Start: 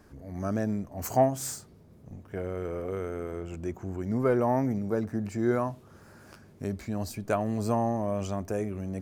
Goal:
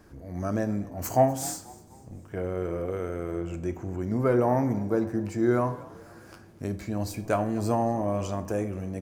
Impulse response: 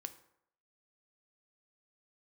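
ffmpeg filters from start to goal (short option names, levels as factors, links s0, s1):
-filter_complex "[0:a]asplit=4[s0][s1][s2][s3];[s1]adelay=246,afreqshift=44,volume=0.0891[s4];[s2]adelay=492,afreqshift=88,volume=0.0394[s5];[s3]adelay=738,afreqshift=132,volume=0.0172[s6];[s0][s4][s5][s6]amix=inputs=4:normalize=0[s7];[1:a]atrim=start_sample=2205[s8];[s7][s8]afir=irnorm=-1:irlink=0,volume=1.88"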